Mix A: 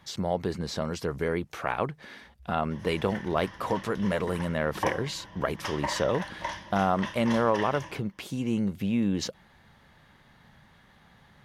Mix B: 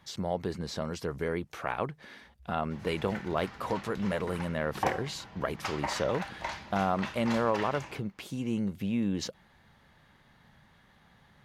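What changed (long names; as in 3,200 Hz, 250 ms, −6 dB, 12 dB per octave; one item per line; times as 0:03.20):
speech −3.5 dB
background: remove EQ curve with evenly spaced ripples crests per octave 1.2, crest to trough 10 dB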